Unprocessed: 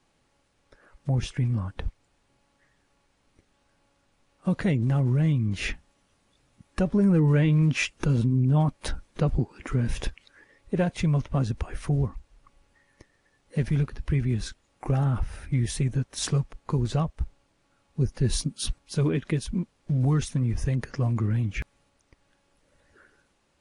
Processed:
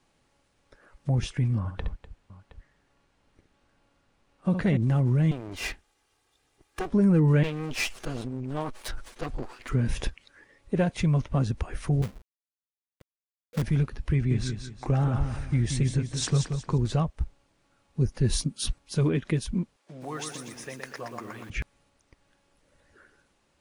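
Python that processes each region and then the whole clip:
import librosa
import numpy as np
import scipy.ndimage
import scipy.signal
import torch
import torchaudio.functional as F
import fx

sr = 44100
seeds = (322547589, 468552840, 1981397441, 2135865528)

y = fx.chain(x, sr, fx.high_shelf(hz=5000.0, db=-7.5),
    fx.echo_multitap(ms=(67, 248, 718), db=(-8.0, -15.0, -17.5)), at=(1.58, 4.77))
y = fx.chain(y, sr, fx.lower_of_two(delay_ms=2.5),
    fx.low_shelf(hz=280.0, db=-7.0), at=(5.31, 6.9))
y = fx.chain(y, sr, fx.lower_of_two(delay_ms=8.0),
    fx.peak_eq(hz=130.0, db=-14.0, octaves=2.5),
    fx.sustainer(db_per_s=130.0), at=(7.43, 9.69))
y = fx.chain(y, sr, fx.cheby_ripple(hz=710.0, ripple_db=9),
    fx.quant_companded(bits=4), at=(12.02, 13.62))
y = fx.chain(y, sr, fx.steep_lowpass(hz=9200.0, slope=72),
    fx.echo_feedback(ms=180, feedback_pct=32, wet_db=-7), at=(14.13, 16.78))
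y = fx.chain(y, sr, fx.highpass(hz=520.0, slope=12),
    fx.echo_crushed(ms=120, feedback_pct=55, bits=9, wet_db=-4.5), at=(19.76, 21.5))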